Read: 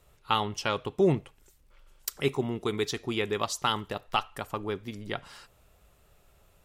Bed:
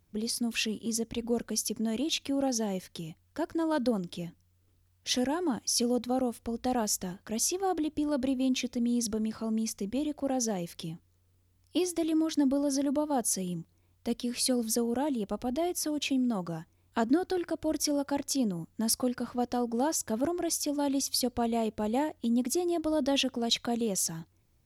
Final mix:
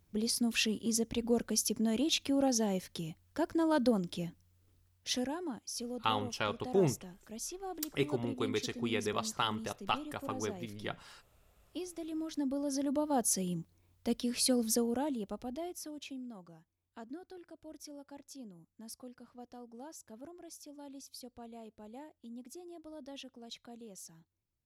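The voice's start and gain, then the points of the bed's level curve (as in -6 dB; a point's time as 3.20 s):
5.75 s, -5.5 dB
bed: 4.78 s -0.5 dB
5.69 s -12.5 dB
12.02 s -12.5 dB
13.20 s -1.5 dB
14.74 s -1.5 dB
16.58 s -20 dB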